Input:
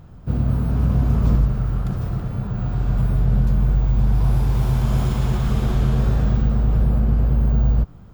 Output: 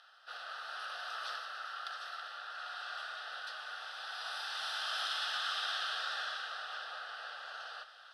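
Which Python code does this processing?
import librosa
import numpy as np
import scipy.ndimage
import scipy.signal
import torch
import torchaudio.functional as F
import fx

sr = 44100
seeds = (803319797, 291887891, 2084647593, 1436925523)

p1 = scipy.signal.sosfilt(scipy.signal.butter(4, 1100.0, 'highpass', fs=sr, output='sos'), x)
p2 = fx.high_shelf(p1, sr, hz=3400.0, db=8.0)
p3 = fx.fixed_phaser(p2, sr, hz=1500.0, stages=8)
p4 = np.clip(10.0 ** (35.5 / 20.0) * p3, -1.0, 1.0) / 10.0 ** (35.5 / 20.0)
p5 = p3 + (p4 * 10.0 ** (-9.5 / 20.0))
p6 = scipy.signal.sosfilt(scipy.signal.butter(4, 7300.0, 'lowpass', fs=sr, output='sos'), p5)
p7 = p6 + fx.echo_diffused(p6, sr, ms=539, feedback_pct=64, wet_db=-16.0, dry=0)
y = p7 * 10.0 ** (1.0 / 20.0)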